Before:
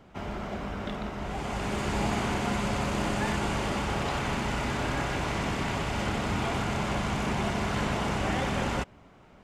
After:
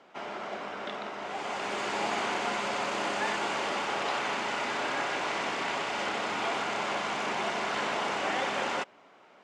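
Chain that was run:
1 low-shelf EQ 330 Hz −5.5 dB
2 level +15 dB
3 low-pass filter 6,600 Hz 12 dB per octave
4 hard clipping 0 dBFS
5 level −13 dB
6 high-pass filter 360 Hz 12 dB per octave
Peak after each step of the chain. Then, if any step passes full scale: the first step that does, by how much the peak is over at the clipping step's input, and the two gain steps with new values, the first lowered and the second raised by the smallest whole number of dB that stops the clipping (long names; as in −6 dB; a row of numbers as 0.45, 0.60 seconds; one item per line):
−17.5, −2.5, −2.5, −2.5, −15.5, −18.0 dBFS
no step passes full scale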